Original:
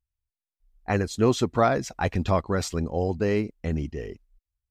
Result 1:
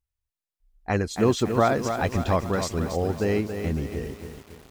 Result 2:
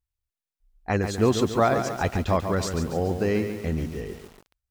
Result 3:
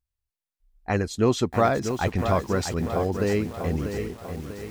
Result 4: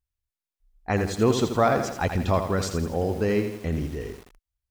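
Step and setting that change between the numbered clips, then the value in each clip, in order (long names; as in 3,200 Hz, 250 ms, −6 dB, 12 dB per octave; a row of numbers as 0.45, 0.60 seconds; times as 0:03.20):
feedback echo at a low word length, delay time: 278, 141, 643, 83 milliseconds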